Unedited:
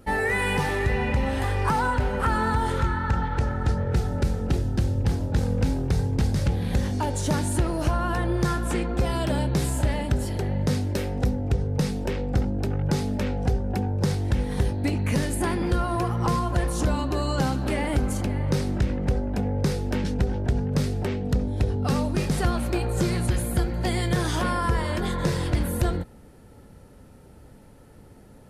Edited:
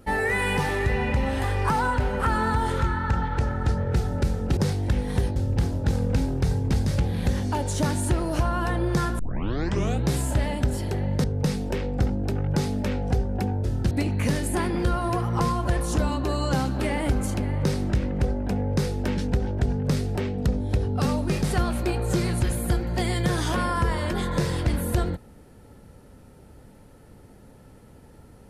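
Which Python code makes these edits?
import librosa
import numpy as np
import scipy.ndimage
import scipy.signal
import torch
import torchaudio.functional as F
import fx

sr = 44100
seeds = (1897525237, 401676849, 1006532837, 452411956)

y = fx.edit(x, sr, fx.swap(start_s=4.57, length_s=0.27, other_s=13.99, other_length_s=0.79),
    fx.tape_start(start_s=8.67, length_s=0.89),
    fx.cut(start_s=10.72, length_s=0.87), tone=tone)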